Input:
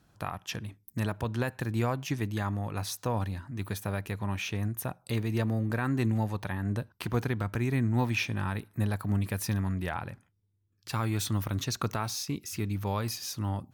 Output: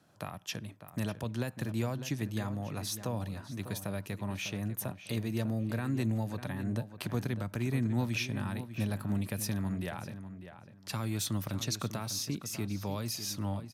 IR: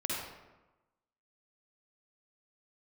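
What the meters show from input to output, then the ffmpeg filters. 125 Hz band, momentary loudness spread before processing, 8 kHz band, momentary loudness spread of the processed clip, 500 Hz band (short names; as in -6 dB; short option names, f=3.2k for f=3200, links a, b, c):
-4.5 dB, 8 LU, 0.0 dB, 8 LU, -4.0 dB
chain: -filter_complex "[0:a]highpass=130,equalizer=f=600:t=o:w=0.36:g=6.5,acrossover=split=270|3000[a][b][c];[b]acompressor=threshold=-46dB:ratio=2[d];[a][d][c]amix=inputs=3:normalize=0,asplit=2[e][f];[f]adelay=599,lowpass=f=3.1k:p=1,volume=-11dB,asplit=2[g][h];[h]adelay=599,lowpass=f=3.1k:p=1,volume=0.22,asplit=2[i][j];[j]adelay=599,lowpass=f=3.1k:p=1,volume=0.22[k];[g][i][k]amix=inputs=3:normalize=0[l];[e][l]amix=inputs=2:normalize=0,aresample=32000,aresample=44100"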